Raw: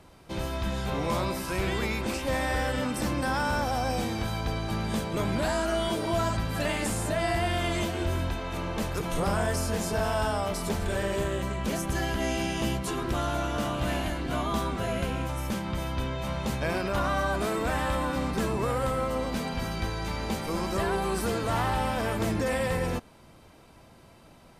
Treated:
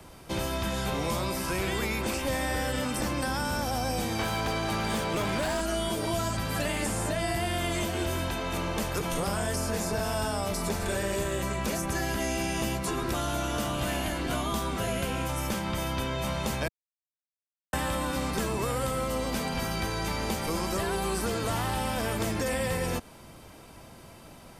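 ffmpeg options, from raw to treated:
-filter_complex "[0:a]asettb=1/sr,asplit=3[s0][s1][s2];[s0]atrim=end=4.194[s3];[s1]atrim=start=4.19:end=5.61,asetpts=PTS-STARTPTS,afade=t=in:d=0.004:c=qsin,afade=t=out:st=1.416:d=0.004:c=qsin,asplit=2[s4][s5];[s5]highpass=f=720:p=1,volume=8.91,asoftclip=type=tanh:threshold=0.133[s6];[s4][s6]amix=inputs=2:normalize=0,lowpass=f=2200:p=1,volume=0.501[s7];[s2]atrim=start=5.606[s8];[s3][s7]acrossfade=d=0.004:c1=hsin:c2=qsin[s9];[s9][s8]acrossfade=d=0.004:c1=qsin:c2=hsin,asettb=1/sr,asplit=3[s10][s11][s12];[s10]atrim=end=9.704[s13];[s11]atrim=start=9.7:end=13.16,asetpts=PTS-STARTPTS,afade=t=in:d=0.004:c=qsin,afade=t=out:st=3.456:d=0.004:c=qsin,bandreject=f=3100:w=12[s14];[s12]atrim=start=13.156[s15];[s13][s14]acrossfade=d=0.004:c1=hsin:c2=qsin[s16];[s16][s15]acrossfade=d=0.004:c1=qsin:c2=hsin,asplit=3[s17][s18][s19];[s17]atrim=end=16.68,asetpts=PTS-STARTPTS,afade=t=out:st=16.676:d=0.004:c=hsin[s20];[s18]atrim=start=16.68:end=17.73,asetpts=PTS-STARTPTS,volume=0[s21];[s19]atrim=start=17.73,asetpts=PTS-STARTPTS,afade=t=in:d=0.004:c=hsin[s22];[s20][s21][s22]concat=n=3:v=0:a=1,highshelf=f=6500:g=7,bandreject=f=4000:w=24,acrossover=split=120|400|2600|7700[s23][s24][s25][s26][s27];[s23]acompressor=threshold=0.00891:ratio=4[s28];[s24]acompressor=threshold=0.0112:ratio=4[s29];[s25]acompressor=threshold=0.0141:ratio=4[s30];[s26]acompressor=threshold=0.00631:ratio=4[s31];[s27]acompressor=threshold=0.00447:ratio=4[s32];[s28][s29][s30][s31][s32]amix=inputs=5:normalize=0,volume=1.68"

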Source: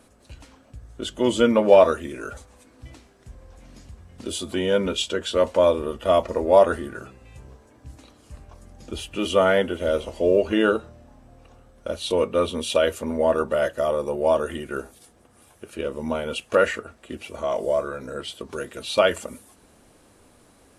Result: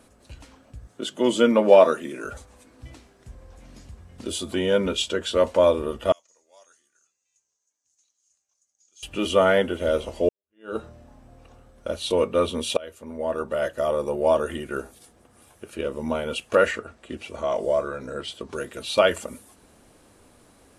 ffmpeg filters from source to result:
-filter_complex "[0:a]asettb=1/sr,asplit=3[s0][s1][s2];[s0]atrim=end=0.874[s3];[s1]atrim=start=0.87:end=2.25,asetpts=PTS-STARTPTS,afade=t=in:d=0.004:c=qsin,afade=t=out:st=1.376:d=0.004:c=qsin,highpass=f=150:w=0.5412,highpass=f=150:w=1.3066[s4];[s2]atrim=start=2.246[s5];[s3][s4]acrossfade=d=0.004:c1=hsin:c2=qsin[s6];[s6][s5]acrossfade=d=0.004:c1=qsin:c2=hsin,asettb=1/sr,asplit=3[s7][s8][s9];[s7]atrim=end=6.124[s10];[s8]atrim=start=6.12:end=9.03,asetpts=PTS-STARTPTS,afade=t=in:d=0.004:c=qsin,afade=t=out:st=2.906:d=0.004:c=qsin,bandpass=f=6500:t=q:w=9.5[s11];[s9]atrim=start=9.026[s12];[s10][s11]acrossfade=d=0.004:c1=hsin:c2=qsin[s13];[s13][s12]acrossfade=d=0.004:c1=qsin:c2=hsin,asettb=1/sr,asplit=3[s14][s15][s16];[s14]atrim=end=16.714[s17];[s15]atrim=start=16.71:end=18.55,asetpts=PTS-STARTPTS,afade=t=in:d=0.004:c=qsin,afade=t=out:st=1.836:d=0.004:c=qsin,lowpass=9000[s18];[s16]atrim=start=18.546[s19];[s17][s18]acrossfade=d=0.004:c1=hsin:c2=qsin[s20];[s20][s19]acrossfade=d=0.004:c1=qsin:c2=hsin,asplit=3[s21][s22][s23];[s21]atrim=end=10.29,asetpts=PTS-STARTPTS,afade=t=out:st=10.286:d=0.004:c=hsin[s24];[s22]atrim=start=10.29:end=12.77,asetpts=PTS-STARTPTS,afade=t=in:d=0.48:c=exp,afade=t=out:st=2.476:d=0.004:c=hsin:silence=0.0707946[s25];[s23]atrim=start=12.77,asetpts=PTS-STARTPTS,afade=t=in:d=1.24:silence=0.0707946[s26];[s24][s25][s26]concat=n=3:v=0:a=1"

